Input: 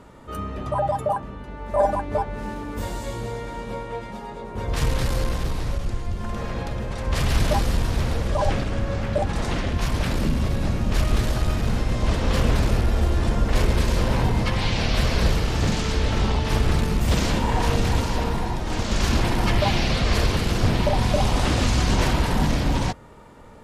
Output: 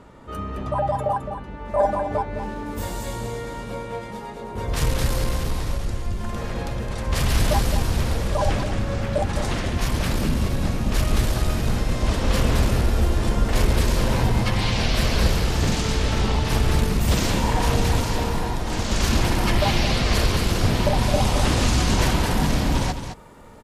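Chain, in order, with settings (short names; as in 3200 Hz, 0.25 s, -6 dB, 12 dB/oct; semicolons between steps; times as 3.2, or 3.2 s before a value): high shelf 8000 Hz -6 dB, from 2.66 s +8 dB; echo 0.214 s -9 dB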